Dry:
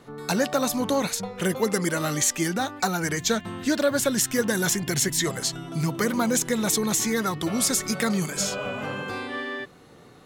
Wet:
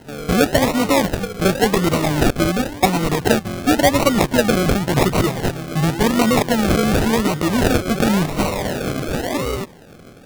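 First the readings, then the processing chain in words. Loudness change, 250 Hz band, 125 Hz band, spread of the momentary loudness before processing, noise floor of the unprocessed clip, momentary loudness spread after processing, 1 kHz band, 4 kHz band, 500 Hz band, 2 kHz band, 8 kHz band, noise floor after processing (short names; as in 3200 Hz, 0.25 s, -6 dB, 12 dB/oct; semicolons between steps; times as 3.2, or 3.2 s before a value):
+7.0 dB, +8.5 dB, +10.5 dB, 8 LU, -50 dBFS, 7 LU, +9.5 dB, +5.0 dB, +8.5 dB, +6.0 dB, -3.0 dB, -42 dBFS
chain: painted sound fall, 9.08–9.6, 370–1000 Hz -34 dBFS; decimation with a swept rate 37×, swing 60% 0.92 Hz; gain +8 dB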